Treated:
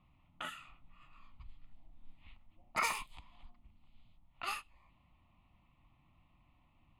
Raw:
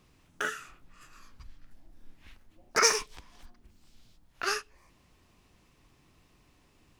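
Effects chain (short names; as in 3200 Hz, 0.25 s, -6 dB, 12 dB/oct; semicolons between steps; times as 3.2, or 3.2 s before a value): fixed phaser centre 1600 Hz, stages 6; low-pass opened by the level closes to 2200 Hz, open at -34.5 dBFS; gain -3 dB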